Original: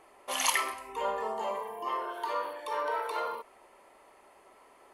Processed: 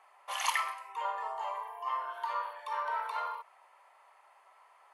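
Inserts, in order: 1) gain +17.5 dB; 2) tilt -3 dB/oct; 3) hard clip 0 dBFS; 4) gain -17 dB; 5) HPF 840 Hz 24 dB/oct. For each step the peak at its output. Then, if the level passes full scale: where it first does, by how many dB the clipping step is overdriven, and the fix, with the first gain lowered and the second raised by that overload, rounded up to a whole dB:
+8.5, +4.0, 0.0, -17.0, -16.5 dBFS; step 1, 4.0 dB; step 1 +13.5 dB, step 4 -13 dB

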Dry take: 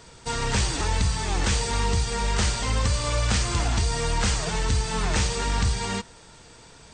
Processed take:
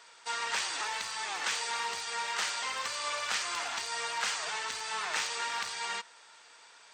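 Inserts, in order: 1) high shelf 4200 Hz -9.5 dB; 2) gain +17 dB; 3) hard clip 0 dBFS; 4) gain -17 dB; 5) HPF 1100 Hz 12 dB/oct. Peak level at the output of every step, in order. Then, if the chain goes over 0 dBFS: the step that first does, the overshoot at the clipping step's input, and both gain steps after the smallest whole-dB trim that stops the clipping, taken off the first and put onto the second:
-13.5, +3.5, 0.0, -17.0, -17.5 dBFS; step 2, 3.5 dB; step 2 +13 dB, step 4 -13 dB

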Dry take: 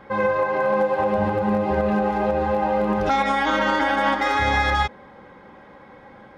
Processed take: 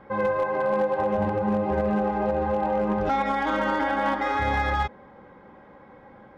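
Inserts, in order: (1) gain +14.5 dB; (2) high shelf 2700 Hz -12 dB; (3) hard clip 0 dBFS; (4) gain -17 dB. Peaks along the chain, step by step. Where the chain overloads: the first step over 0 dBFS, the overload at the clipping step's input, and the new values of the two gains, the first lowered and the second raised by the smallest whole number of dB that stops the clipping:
+5.0, +3.5, 0.0, -17.0 dBFS; step 1, 3.5 dB; step 1 +10.5 dB, step 4 -13 dB

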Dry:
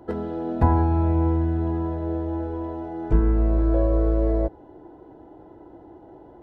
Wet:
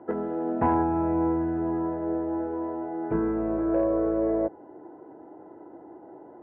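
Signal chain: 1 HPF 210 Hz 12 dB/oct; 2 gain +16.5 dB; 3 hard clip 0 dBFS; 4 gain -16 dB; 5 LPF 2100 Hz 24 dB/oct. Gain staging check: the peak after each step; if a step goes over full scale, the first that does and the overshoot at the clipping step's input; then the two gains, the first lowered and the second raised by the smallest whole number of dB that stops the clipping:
-12.0, +4.5, 0.0, -16.0, -15.0 dBFS; step 2, 4.5 dB; step 2 +11.5 dB, step 4 -11 dB

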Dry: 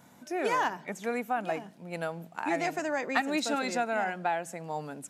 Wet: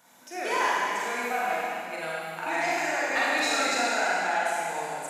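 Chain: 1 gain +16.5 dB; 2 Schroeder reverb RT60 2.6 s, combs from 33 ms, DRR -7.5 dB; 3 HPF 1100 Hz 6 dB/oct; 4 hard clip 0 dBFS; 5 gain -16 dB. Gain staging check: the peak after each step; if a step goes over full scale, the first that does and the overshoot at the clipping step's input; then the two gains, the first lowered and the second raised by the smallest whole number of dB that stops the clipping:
+6.5, +8.5, +5.0, 0.0, -16.0 dBFS; step 1, 5.0 dB; step 1 +11.5 dB, step 5 -11 dB

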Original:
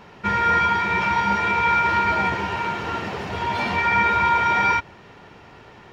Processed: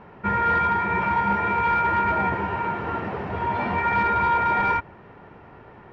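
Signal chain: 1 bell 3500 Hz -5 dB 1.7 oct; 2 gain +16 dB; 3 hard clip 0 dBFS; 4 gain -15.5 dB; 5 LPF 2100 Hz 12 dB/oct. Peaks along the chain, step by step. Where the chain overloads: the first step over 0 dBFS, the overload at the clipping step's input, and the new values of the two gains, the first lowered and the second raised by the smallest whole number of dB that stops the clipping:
-10.0, +6.0, 0.0, -15.5, -15.0 dBFS; step 2, 6.0 dB; step 2 +10 dB, step 4 -9.5 dB

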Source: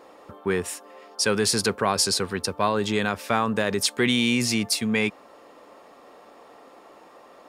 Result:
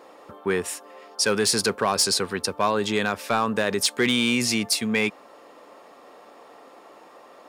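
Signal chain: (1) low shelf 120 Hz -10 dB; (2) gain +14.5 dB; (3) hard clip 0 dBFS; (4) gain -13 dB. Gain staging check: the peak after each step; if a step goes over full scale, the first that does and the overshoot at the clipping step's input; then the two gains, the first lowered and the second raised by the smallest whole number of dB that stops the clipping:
-8.5, +6.0, 0.0, -13.0 dBFS; step 2, 6.0 dB; step 2 +8.5 dB, step 4 -7 dB

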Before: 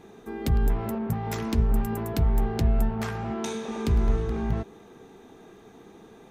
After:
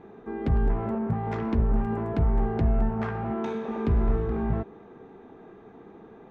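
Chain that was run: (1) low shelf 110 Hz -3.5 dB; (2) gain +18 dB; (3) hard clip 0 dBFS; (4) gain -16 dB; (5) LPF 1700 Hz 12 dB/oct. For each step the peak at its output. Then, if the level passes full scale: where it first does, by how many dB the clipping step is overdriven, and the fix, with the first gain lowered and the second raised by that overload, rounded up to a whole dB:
-13.5, +4.5, 0.0, -16.0, -16.0 dBFS; step 2, 4.5 dB; step 2 +13 dB, step 4 -11 dB

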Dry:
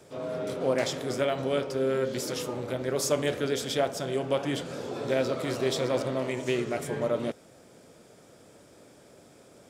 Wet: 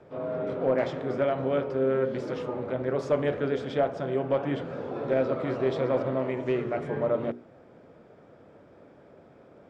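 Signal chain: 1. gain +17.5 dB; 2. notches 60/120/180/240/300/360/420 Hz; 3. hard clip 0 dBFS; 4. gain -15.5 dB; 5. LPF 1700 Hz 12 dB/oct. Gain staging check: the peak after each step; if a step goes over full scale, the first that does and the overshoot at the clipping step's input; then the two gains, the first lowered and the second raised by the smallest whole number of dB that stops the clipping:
+4.5, +5.0, 0.0, -15.5, -15.0 dBFS; step 1, 5.0 dB; step 1 +12.5 dB, step 4 -10.5 dB

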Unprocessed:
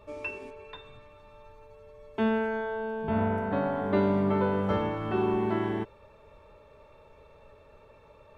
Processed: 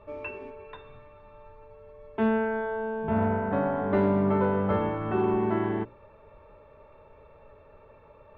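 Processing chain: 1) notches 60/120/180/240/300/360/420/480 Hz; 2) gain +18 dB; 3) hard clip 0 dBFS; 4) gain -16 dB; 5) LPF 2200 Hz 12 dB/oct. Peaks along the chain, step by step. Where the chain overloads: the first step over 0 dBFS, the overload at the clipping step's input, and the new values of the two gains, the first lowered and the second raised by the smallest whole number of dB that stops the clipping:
-13.5, +4.5, 0.0, -16.0, -16.0 dBFS; step 2, 4.5 dB; step 2 +13 dB, step 4 -11 dB

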